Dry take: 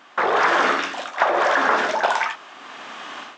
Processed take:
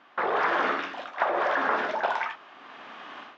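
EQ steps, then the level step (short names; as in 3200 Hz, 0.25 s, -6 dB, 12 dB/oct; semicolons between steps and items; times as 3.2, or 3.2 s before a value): air absorption 200 m; -6.0 dB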